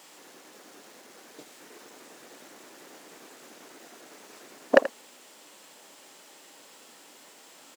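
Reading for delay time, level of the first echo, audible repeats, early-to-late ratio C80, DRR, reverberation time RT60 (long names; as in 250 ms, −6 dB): 82 ms, −15.0 dB, 1, no reverb audible, no reverb audible, no reverb audible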